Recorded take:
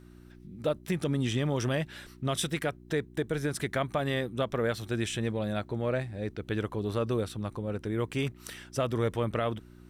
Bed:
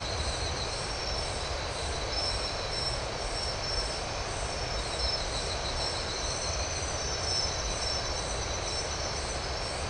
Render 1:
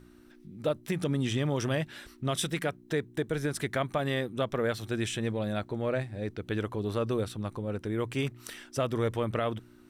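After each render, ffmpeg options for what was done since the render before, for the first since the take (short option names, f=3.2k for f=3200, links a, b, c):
-af "bandreject=f=60:t=h:w=4,bandreject=f=120:t=h:w=4,bandreject=f=180:t=h:w=4"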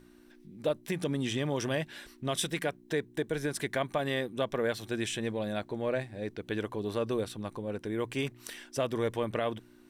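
-af "equalizer=f=77:w=0.64:g=-8.5,bandreject=f=1.3k:w=7.9"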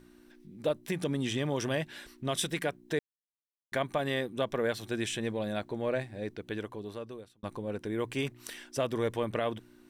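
-filter_complex "[0:a]asplit=4[a][b][c][d];[a]atrim=end=2.99,asetpts=PTS-STARTPTS,afade=t=out:st=2.986:d=0.004:c=hsin[e];[b]atrim=start=2.99:end=3.72,asetpts=PTS-STARTPTS,volume=0[f];[c]atrim=start=3.72:end=7.43,asetpts=PTS-STARTPTS,afade=t=in:d=0.004:c=hsin,afade=t=out:st=2.47:d=1.24[g];[d]atrim=start=7.43,asetpts=PTS-STARTPTS,afade=t=in:d=0.004:c=hsin[h];[e][f][g][h]concat=n=4:v=0:a=1"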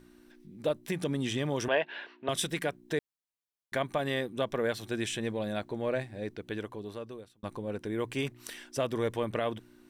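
-filter_complex "[0:a]asettb=1/sr,asplit=3[a][b][c];[a]atrim=end=1.684[d];[b]atrim=start=1.68:end=2.29,asetpts=PTS-STARTPTS,afade=t=in:d=0.004:c=qsin,afade=t=out:st=0.606:d=0.004:c=qsin,highpass=360,equalizer=f=440:t=q:w=4:g=7,equalizer=f=670:t=q:w=4:g=8,equalizer=f=950:t=q:w=4:g=9,equalizer=f=1.6k:t=q:w=4:g=7,equalizer=f=2.7k:t=q:w=4:g=7,lowpass=f=3.7k:w=0.5412,lowpass=f=3.7k:w=1.3066[e];[c]atrim=start=2.286[f];[d][e]acrossfade=d=0.004:c1=hsin:c2=qsin[g];[g][f]acrossfade=d=0.004:c1=qsin:c2=hsin"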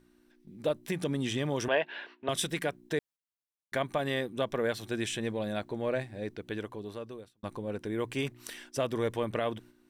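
-af "agate=range=-7dB:threshold=-52dB:ratio=16:detection=peak"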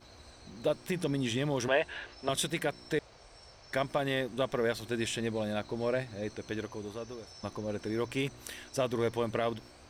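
-filter_complex "[1:a]volume=-22dB[a];[0:a][a]amix=inputs=2:normalize=0"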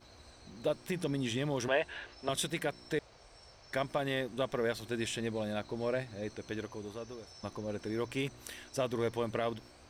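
-af "volume=-2.5dB"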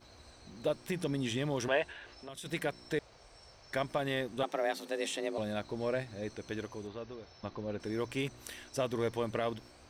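-filter_complex "[0:a]asplit=3[a][b][c];[a]afade=t=out:st=1.91:d=0.02[d];[b]acompressor=threshold=-46dB:ratio=3:attack=3.2:release=140:knee=1:detection=peak,afade=t=in:st=1.91:d=0.02,afade=t=out:st=2.45:d=0.02[e];[c]afade=t=in:st=2.45:d=0.02[f];[d][e][f]amix=inputs=3:normalize=0,asettb=1/sr,asplit=3[g][h][i];[g]atrim=end=4.434[j];[h]atrim=start=4.43:end=5.38,asetpts=PTS-STARTPTS,afade=t=in:d=0.004:c=qsin,afade=t=out:st=0.946:d=0.004:c=qsin,afreqshift=150[k];[i]atrim=start=5.376[l];[j][k]acrossfade=d=0.004:c1=hsin:c2=qsin[m];[m][l]acrossfade=d=0.004:c1=qsin:c2=hsin,asettb=1/sr,asplit=3[n][o][p];[n]atrim=end=6.874[q];[o]atrim=start=6.87:end=7.8,asetpts=PTS-STARTPTS,afade=t=in:d=0.004:c=qsin,afade=t=out:st=0.926:d=0.004:c=qsin,lowpass=f=4.6k:w=0.5412,lowpass=f=4.6k:w=1.3066[r];[p]atrim=start=7.796[s];[q][r]acrossfade=d=0.004:c1=hsin:c2=qsin[t];[t][s]acrossfade=d=0.004:c1=qsin:c2=hsin"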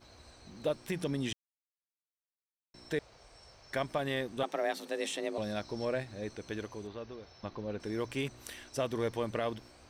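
-filter_complex "[0:a]asettb=1/sr,asplit=3[a][b][c];[a]atrim=end=5.424[d];[b]atrim=start=5.42:end=5.85,asetpts=PTS-STARTPTS,afade=t=in:d=0.004:c=qsin,afade=t=out:st=0.426:d=0.004:c=qsin,equalizer=f=5.3k:t=o:w=0.3:g=12.5[e];[c]atrim=start=5.846[f];[d][e]acrossfade=d=0.004:c1=hsin:c2=qsin[g];[g][f]acrossfade=d=0.004:c1=qsin:c2=hsin,asplit=3[h][i][j];[h]atrim=end=1.33,asetpts=PTS-STARTPTS,afade=t=out:st=1.326:d=0.004:c=hsin[k];[i]atrim=start=1.33:end=2.74,asetpts=PTS-STARTPTS,volume=0[l];[j]atrim=start=2.74,asetpts=PTS-STARTPTS,afade=t=in:d=0.004:c=hsin[m];[k][l][m]concat=n=3:v=0:a=1"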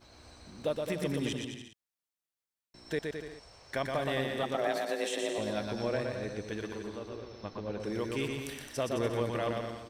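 -af "aecho=1:1:120|216|292.8|354.2|403.4:0.631|0.398|0.251|0.158|0.1"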